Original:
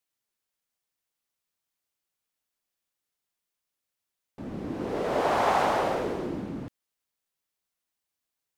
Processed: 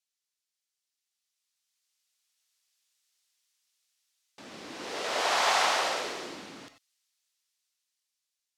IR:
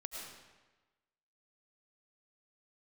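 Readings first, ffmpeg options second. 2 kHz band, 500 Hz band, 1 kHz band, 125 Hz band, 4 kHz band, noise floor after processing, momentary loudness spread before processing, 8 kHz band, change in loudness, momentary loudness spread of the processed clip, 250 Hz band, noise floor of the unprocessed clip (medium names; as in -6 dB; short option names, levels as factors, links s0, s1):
+4.0 dB, -6.5 dB, -2.5 dB, -18.5 dB, +10.5 dB, under -85 dBFS, 16 LU, +11.5 dB, +0.5 dB, 20 LU, -13.0 dB, under -85 dBFS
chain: -filter_complex "[0:a]dynaudnorm=f=530:g=7:m=3.98,bandpass=f=5300:t=q:w=0.93:csg=0[s0];[1:a]atrim=start_sample=2205,atrim=end_sample=4410[s1];[s0][s1]afir=irnorm=-1:irlink=0,volume=2.37"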